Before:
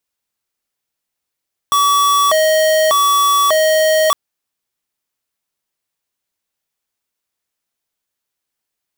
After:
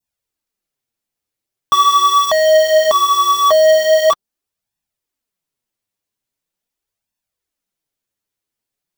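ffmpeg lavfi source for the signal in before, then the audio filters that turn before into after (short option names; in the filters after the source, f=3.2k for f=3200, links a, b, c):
-f lavfi -i "aevalsrc='0.237*(2*lt(mod((884*t+256/0.84*(0.5-abs(mod(0.84*t,1)-0.5))),1),0.5)-1)':d=2.41:s=44100"
-filter_complex "[0:a]asplit=2[a][b];[b]adynamicsmooth=sensitivity=4:basefreq=690,volume=0dB[c];[a][c]amix=inputs=2:normalize=0,adynamicequalizer=threshold=0.0794:dfrequency=2000:dqfactor=0.85:tfrequency=2000:tqfactor=0.85:attack=5:release=100:ratio=0.375:range=3:mode=cutabove:tftype=bell,flanger=delay=1.1:depth=8.7:regen=12:speed=0.42:shape=sinusoidal"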